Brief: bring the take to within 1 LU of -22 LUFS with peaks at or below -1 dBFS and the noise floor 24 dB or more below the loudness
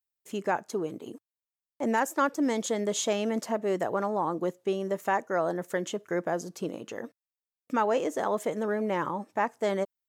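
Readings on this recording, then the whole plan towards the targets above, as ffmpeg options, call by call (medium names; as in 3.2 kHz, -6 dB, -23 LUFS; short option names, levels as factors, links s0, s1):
loudness -30.0 LUFS; peak level -14.0 dBFS; loudness target -22.0 LUFS
-> -af "volume=2.51"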